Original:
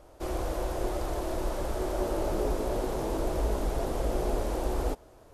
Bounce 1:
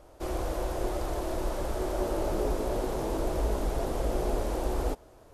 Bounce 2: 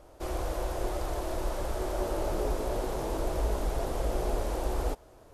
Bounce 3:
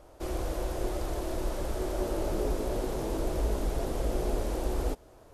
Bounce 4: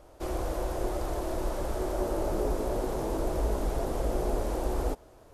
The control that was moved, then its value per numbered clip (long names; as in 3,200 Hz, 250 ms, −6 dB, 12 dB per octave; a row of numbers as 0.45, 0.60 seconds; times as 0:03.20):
dynamic equaliser, frequency: 8,700, 250, 900, 3,100 Hertz